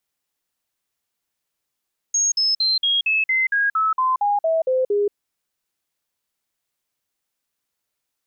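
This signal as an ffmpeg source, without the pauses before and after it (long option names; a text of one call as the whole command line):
ffmpeg -f lavfi -i "aevalsrc='0.158*clip(min(mod(t,0.23),0.18-mod(t,0.23))/0.005,0,1)*sin(2*PI*6550*pow(2,-floor(t/0.23)/3)*mod(t,0.23))':duration=2.99:sample_rate=44100" out.wav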